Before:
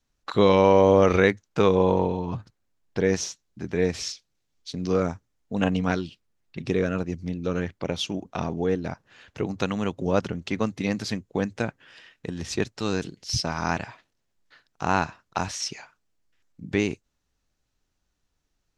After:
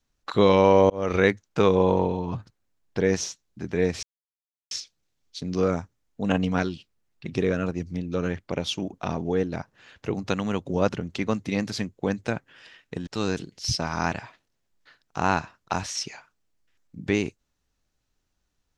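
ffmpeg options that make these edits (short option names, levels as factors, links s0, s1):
-filter_complex "[0:a]asplit=4[s0][s1][s2][s3];[s0]atrim=end=0.9,asetpts=PTS-STARTPTS,afade=t=out:st=0.896:d=0.004:c=hsin[s4];[s1]atrim=start=0.9:end=4.03,asetpts=PTS-STARTPTS,afade=t=in:d=0.37,afade=t=out:st=3.126:d=0.004:c=hsin,apad=pad_dur=0.68[s5];[s2]atrim=start=4.03:end=12.392,asetpts=PTS-STARTPTS,afade=t=in:d=0.004:c=hsin[s6];[s3]atrim=start=12.718[s7];[s4][s5][s6]concat=n=3:v=0:a=1[s8];[s8][s7]acrossfade=d=0.004:c1=hsin:c2=hsin"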